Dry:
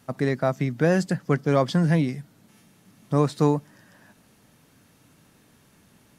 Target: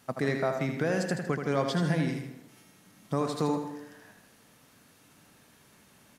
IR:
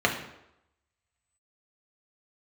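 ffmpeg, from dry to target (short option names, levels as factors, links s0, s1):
-filter_complex "[0:a]lowshelf=f=330:g=-7.5,alimiter=limit=0.133:level=0:latency=1:release=225,aecho=1:1:79|158|237|316|395:0.473|0.189|0.0757|0.0303|0.0121,asplit=2[s0][s1];[1:a]atrim=start_sample=2205,adelay=126[s2];[s1][s2]afir=irnorm=-1:irlink=0,volume=0.0501[s3];[s0][s3]amix=inputs=2:normalize=0"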